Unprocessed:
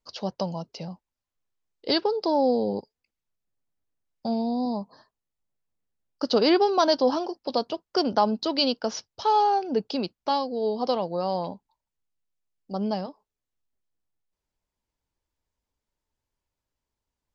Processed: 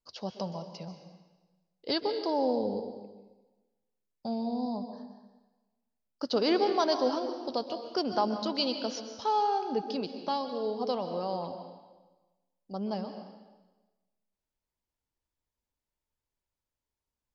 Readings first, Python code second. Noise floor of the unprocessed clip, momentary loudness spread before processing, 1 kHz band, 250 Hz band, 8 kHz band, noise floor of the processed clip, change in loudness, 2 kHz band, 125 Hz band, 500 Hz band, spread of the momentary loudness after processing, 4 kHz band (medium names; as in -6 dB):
under -85 dBFS, 14 LU, -6.0 dB, -5.5 dB, no reading, under -85 dBFS, -6.0 dB, -5.5 dB, -6.0 dB, -5.5 dB, 17 LU, -6.0 dB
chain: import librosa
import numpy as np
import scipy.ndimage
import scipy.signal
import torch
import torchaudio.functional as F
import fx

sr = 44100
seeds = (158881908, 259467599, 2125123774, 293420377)

y = fx.rev_plate(x, sr, seeds[0], rt60_s=1.2, hf_ratio=0.95, predelay_ms=115, drr_db=7.5)
y = y * librosa.db_to_amplitude(-6.5)